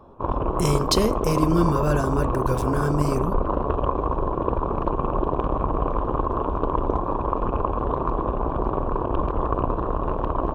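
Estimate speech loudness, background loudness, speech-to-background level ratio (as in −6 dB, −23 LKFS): −24.5 LKFS, −25.5 LKFS, 1.0 dB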